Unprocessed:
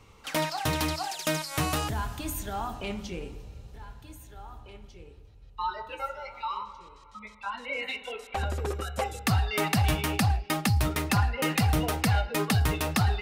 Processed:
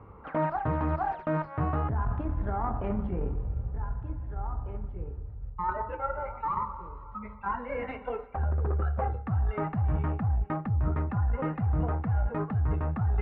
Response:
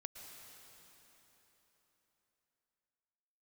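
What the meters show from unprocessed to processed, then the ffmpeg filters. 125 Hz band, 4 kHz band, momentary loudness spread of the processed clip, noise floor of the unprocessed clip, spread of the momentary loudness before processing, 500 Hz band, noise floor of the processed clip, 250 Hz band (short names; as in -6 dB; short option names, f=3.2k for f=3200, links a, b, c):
0.0 dB, under -25 dB, 8 LU, -52 dBFS, 21 LU, -0.5 dB, -45 dBFS, -2.5 dB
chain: -af "aeval=exprs='0.133*(cos(1*acos(clip(val(0)/0.133,-1,1)))-cos(1*PI/2))+0.0119*(cos(6*acos(clip(val(0)/0.133,-1,1)))-cos(6*PI/2))':c=same,lowpass=f=1.4k:w=0.5412,lowpass=f=1.4k:w=1.3066,asubboost=boost=2.5:cutoff=170,areverse,acompressor=threshold=-30dB:ratio=12,areverse,highpass=42,volume=7dB"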